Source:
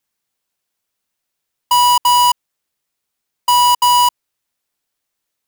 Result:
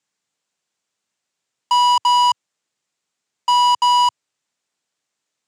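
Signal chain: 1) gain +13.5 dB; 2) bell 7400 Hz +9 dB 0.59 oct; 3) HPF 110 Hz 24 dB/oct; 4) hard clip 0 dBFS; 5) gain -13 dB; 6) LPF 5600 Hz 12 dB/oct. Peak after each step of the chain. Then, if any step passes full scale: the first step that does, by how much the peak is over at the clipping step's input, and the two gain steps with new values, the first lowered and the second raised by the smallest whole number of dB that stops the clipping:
+3.0, +8.0, +9.5, 0.0, -13.0, -12.0 dBFS; step 1, 9.5 dB; step 1 +3.5 dB, step 5 -3 dB

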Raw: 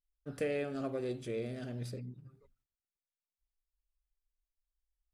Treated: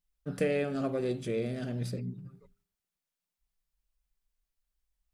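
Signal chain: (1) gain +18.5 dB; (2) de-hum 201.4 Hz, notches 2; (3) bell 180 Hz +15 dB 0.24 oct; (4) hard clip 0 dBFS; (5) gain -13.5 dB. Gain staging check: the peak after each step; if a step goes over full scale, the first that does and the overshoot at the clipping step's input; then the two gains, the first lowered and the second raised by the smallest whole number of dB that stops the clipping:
-5.0, -5.0, -3.5, -3.5, -17.0 dBFS; no overload

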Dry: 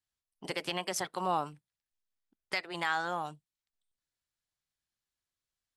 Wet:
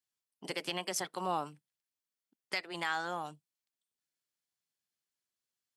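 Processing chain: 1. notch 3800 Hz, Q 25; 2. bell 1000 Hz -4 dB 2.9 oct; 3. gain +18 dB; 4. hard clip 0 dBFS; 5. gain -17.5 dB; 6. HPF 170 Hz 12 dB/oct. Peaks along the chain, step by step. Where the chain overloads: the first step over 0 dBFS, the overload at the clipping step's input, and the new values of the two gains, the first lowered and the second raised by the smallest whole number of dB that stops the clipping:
-17.5, -20.0, -2.0, -2.0, -19.5, -20.0 dBFS; no overload

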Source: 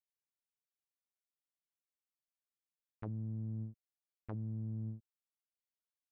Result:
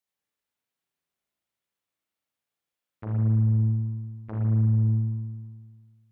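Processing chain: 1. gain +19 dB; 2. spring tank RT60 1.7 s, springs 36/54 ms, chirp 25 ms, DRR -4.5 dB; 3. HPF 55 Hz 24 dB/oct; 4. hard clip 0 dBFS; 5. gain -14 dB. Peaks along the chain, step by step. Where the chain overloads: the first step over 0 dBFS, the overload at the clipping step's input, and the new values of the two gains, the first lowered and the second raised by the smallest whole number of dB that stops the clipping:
-12.5, -1.0, -2.0, -2.0, -16.0 dBFS; no overload

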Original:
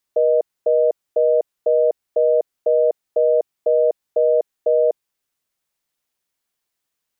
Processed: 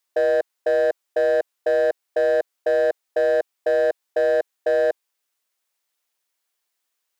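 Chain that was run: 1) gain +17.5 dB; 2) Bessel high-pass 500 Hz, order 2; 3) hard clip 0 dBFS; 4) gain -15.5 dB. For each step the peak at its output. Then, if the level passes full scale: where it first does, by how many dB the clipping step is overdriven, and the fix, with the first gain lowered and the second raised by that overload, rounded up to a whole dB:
+8.0, +5.5, 0.0, -15.5 dBFS; step 1, 5.5 dB; step 1 +11.5 dB, step 4 -9.5 dB

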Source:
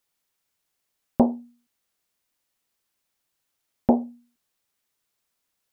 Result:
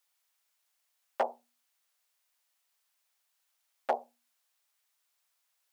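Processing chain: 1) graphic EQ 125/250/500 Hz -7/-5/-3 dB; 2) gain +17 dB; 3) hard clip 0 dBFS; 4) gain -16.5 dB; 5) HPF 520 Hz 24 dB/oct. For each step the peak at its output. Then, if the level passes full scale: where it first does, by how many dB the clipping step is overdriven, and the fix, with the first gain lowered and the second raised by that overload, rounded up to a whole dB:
-9.0, +8.0, 0.0, -16.5, -15.0 dBFS; step 2, 8.0 dB; step 2 +9 dB, step 4 -8.5 dB

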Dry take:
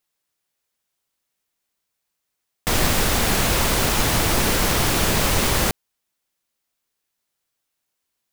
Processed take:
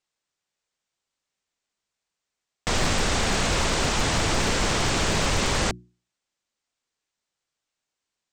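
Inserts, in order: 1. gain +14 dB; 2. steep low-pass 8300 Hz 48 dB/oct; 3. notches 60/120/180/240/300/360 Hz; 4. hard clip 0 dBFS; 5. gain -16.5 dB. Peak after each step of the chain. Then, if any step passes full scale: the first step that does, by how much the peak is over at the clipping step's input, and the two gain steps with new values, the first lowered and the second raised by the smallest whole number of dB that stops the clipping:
+8.5, +7.0, +6.5, 0.0, -16.5 dBFS; step 1, 6.5 dB; step 1 +7 dB, step 5 -9.5 dB

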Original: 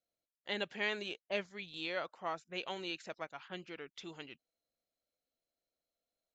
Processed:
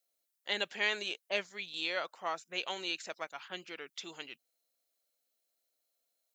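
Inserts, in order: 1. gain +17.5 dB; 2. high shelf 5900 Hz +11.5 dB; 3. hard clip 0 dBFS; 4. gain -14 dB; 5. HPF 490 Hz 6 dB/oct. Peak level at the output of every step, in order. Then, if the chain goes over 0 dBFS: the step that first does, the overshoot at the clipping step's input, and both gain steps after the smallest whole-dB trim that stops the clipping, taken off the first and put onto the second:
-2.5, -1.5, -1.5, -15.5, -17.0 dBFS; no overload

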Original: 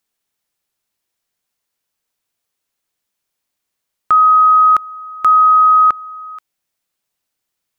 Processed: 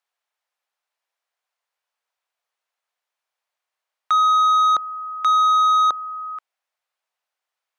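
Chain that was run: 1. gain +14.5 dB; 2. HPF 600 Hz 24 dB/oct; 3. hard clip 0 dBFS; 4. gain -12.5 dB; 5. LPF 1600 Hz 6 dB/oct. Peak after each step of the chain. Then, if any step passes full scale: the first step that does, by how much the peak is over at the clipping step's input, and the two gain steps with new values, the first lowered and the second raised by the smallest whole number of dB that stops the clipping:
+9.0, +9.5, 0.0, -12.5, -13.0 dBFS; step 1, 9.5 dB; step 1 +4.5 dB, step 4 -2.5 dB

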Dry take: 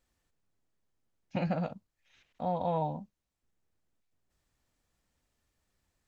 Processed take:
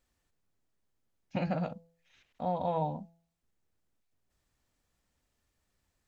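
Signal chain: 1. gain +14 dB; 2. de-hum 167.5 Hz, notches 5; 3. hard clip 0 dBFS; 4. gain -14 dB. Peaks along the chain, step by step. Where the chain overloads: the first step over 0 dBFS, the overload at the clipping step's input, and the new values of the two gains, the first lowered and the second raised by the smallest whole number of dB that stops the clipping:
-6.0, -5.0, -5.0, -19.0 dBFS; no overload

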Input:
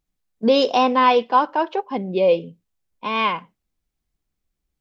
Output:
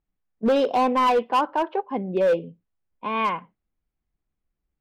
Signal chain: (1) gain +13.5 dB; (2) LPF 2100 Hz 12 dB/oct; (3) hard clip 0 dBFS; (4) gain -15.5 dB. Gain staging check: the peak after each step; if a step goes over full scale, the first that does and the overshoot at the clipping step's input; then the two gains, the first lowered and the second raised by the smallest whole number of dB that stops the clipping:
+9.0, +8.0, 0.0, -15.5 dBFS; step 1, 8.0 dB; step 1 +5.5 dB, step 4 -7.5 dB

